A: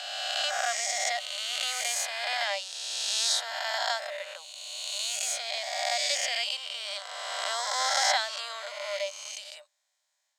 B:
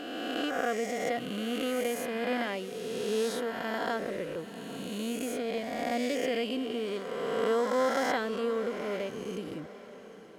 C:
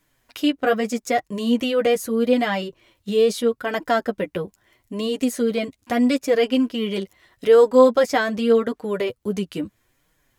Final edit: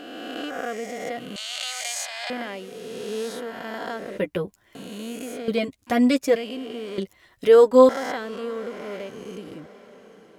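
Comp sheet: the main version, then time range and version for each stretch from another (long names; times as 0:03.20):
B
0:01.36–0:02.30: punch in from A
0:04.18–0:04.75: punch in from C
0:05.48–0:06.36: punch in from C
0:06.98–0:07.89: punch in from C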